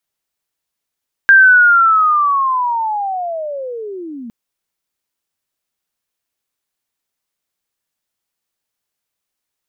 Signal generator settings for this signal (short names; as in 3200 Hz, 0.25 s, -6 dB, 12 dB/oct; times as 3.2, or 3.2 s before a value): chirp linear 1600 Hz -> 220 Hz -3 dBFS -> -26.5 dBFS 3.01 s